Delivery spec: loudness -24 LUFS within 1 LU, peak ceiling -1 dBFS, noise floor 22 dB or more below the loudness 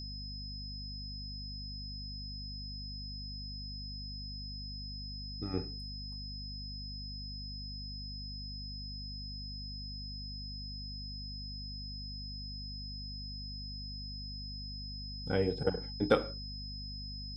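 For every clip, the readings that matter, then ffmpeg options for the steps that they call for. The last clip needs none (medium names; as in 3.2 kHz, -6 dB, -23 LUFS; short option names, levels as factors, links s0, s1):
hum 50 Hz; highest harmonic 250 Hz; hum level -42 dBFS; steady tone 5.1 kHz; tone level -44 dBFS; loudness -40.0 LUFS; peak level -12.5 dBFS; loudness target -24.0 LUFS
-> -af "bandreject=f=50:t=h:w=6,bandreject=f=100:t=h:w=6,bandreject=f=150:t=h:w=6,bandreject=f=200:t=h:w=6,bandreject=f=250:t=h:w=6"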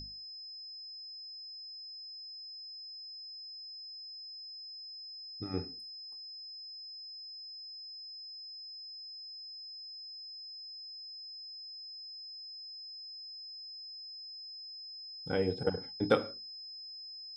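hum not found; steady tone 5.1 kHz; tone level -44 dBFS
-> -af "bandreject=f=5100:w=30"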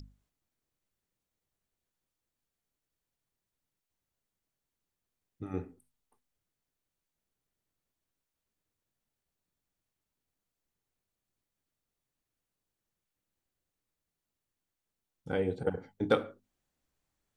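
steady tone not found; loudness -34.0 LUFS; peak level -13.0 dBFS; loudness target -24.0 LUFS
-> -af "volume=3.16"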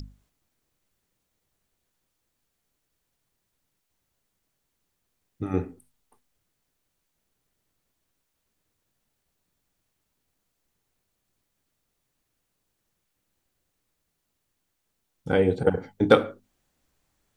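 loudness -24.0 LUFS; peak level -3.0 dBFS; noise floor -78 dBFS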